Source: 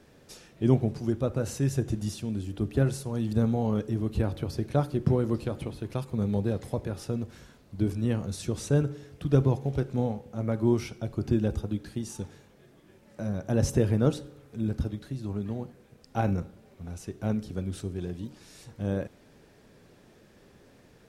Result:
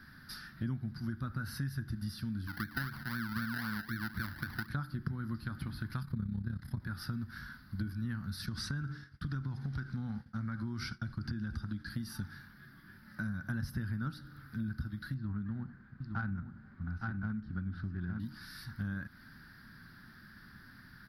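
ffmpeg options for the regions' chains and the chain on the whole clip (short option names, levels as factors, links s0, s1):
-filter_complex "[0:a]asettb=1/sr,asplit=3[s0][s1][s2];[s0]atrim=end=2.474[s3];[s1]atrim=start=2.47:end=4.68,asetpts=PTS-STARTPTS,afade=t=in:d=0.004:c=qsin,afade=t=out:st=2.206:d=0.004:c=qsin,highpass=f=230:p=1,acrusher=samples=31:mix=1:aa=0.000001:lfo=1:lforange=18.6:lforate=3.9[s4];[s2]atrim=start=4.676[s5];[s3][s4]acrossfade=d=0.004:c1=hsin:c2=qsin[s6];[s6][s5]acrossfade=d=0.004:c1=qsin:c2=hsin,asettb=1/sr,asplit=3[s7][s8][s9];[s7]atrim=end=6.024[s10];[s8]atrim=start=6.02:end=6.8,asetpts=PTS-STARTPTS,afade=t=in:d=0.004:c=qsin,afade=t=out:st=0.776:d=0.004:c=qsin,bass=f=250:g=8,treble=f=4000:g=0,tremolo=f=33:d=0.75[s11];[s9]atrim=start=6.796[s12];[s10][s11]acrossfade=d=0.004:c1=hsin:c2=qsin[s13];[s13][s12]acrossfade=d=0.004:c1=qsin:c2=hsin,asettb=1/sr,asplit=3[s14][s15][s16];[s14]atrim=end=8.464[s17];[s15]atrim=start=8.46:end=11.9,asetpts=PTS-STARTPTS,afade=t=in:d=0.004:c=qsin,afade=t=out:st=3.436:d=0.004:c=qsin,agate=range=0.0224:threshold=0.00891:ratio=3:release=100:detection=peak,acompressor=threshold=0.0355:ratio=2.5:attack=3.2:release=140:knee=1:detection=peak,lowpass=f=7600:t=q:w=1.7[s18];[s16]atrim=start=11.896[s19];[s17][s18]acrossfade=d=0.004:c1=hsin:c2=qsin[s20];[s20][s19]acrossfade=d=0.004:c1=qsin:c2=hsin,asettb=1/sr,asplit=3[s21][s22][s23];[s21]atrim=end=15.144[s24];[s22]atrim=start=15.14:end=18.2,asetpts=PTS-STARTPTS,afade=t=in:d=0.004:c=qsin,afade=t=out:st=3.056:d=0.004:c=qsin,adynamicsmooth=sensitivity=2.5:basefreq=1900,aecho=1:1:862:0.398,atrim=end_sample=134946[s25];[s23]atrim=start=18.196[s26];[s24][s25]acrossfade=d=0.004:c1=hsin:c2=qsin[s27];[s27][s26]acrossfade=d=0.004:c1=qsin:c2=hsin,firequalizer=gain_entry='entry(230,0);entry(460,-26);entry(810,-10);entry(1500,13);entry(2500,-10);entry(4800,6);entry(7000,-27);entry(11000,3)':delay=0.05:min_phase=1,acompressor=threshold=0.0141:ratio=6,volume=1.33"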